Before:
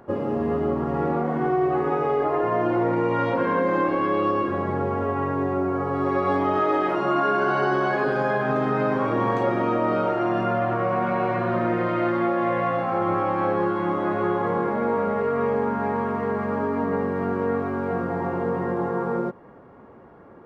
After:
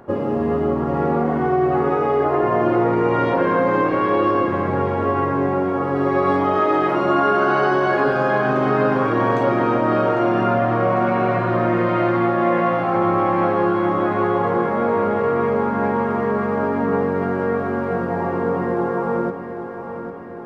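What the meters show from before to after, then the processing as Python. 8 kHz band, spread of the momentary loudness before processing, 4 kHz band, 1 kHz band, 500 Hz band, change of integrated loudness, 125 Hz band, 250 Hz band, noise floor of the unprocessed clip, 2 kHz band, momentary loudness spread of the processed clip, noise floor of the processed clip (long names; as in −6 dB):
can't be measured, 4 LU, +4.5 dB, +4.5 dB, +4.5 dB, +4.5 dB, +5.0 dB, +4.5 dB, −47 dBFS, +4.5 dB, 4 LU, −29 dBFS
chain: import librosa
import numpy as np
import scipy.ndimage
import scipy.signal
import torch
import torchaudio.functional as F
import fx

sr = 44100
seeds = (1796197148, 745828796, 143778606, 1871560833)

y = fx.echo_feedback(x, sr, ms=801, feedback_pct=59, wet_db=-10.0)
y = F.gain(torch.from_numpy(y), 4.0).numpy()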